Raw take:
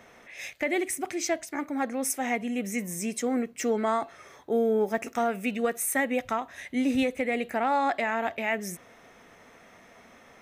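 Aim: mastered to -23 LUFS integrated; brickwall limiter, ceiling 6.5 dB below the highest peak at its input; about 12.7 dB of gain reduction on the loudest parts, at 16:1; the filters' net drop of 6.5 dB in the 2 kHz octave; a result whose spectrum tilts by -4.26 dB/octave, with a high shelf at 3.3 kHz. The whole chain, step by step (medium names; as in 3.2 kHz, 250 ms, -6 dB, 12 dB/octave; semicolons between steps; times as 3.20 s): peaking EQ 2 kHz -5.5 dB; treble shelf 3.3 kHz -6.5 dB; compression 16:1, threshold -34 dBFS; trim +17.5 dB; peak limiter -13.5 dBFS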